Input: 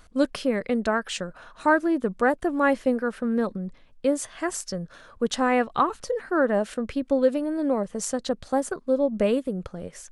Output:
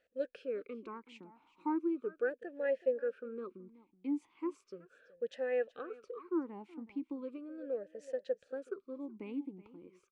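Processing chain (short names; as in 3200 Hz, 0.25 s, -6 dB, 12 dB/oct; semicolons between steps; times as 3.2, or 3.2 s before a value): echo 0.375 s -17 dB; vowel sweep e-u 0.37 Hz; gain -5.5 dB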